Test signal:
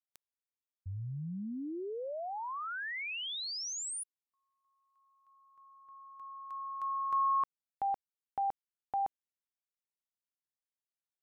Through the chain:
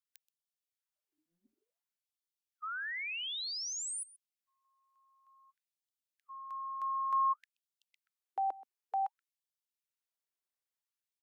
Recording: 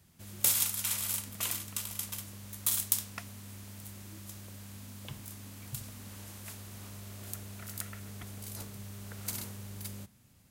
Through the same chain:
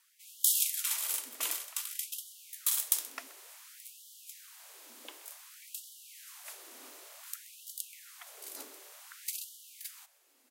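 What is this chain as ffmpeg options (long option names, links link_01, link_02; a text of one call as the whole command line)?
ffmpeg -i in.wav -af "afreqshift=-13,aecho=1:1:128:0.106,afftfilt=real='re*gte(b*sr/1024,240*pow(2900/240,0.5+0.5*sin(2*PI*0.55*pts/sr)))':imag='im*gte(b*sr/1024,240*pow(2900/240,0.5+0.5*sin(2*PI*0.55*pts/sr)))':win_size=1024:overlap=0.75" out.wav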